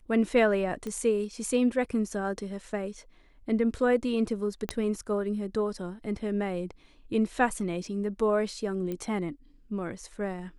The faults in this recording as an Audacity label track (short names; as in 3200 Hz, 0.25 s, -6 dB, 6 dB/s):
0.870000	0.870000	pop -23 dBFS
4.690000	4.690000	pop -16 dBFS
8.920000	8.920000	pop -22 dBFS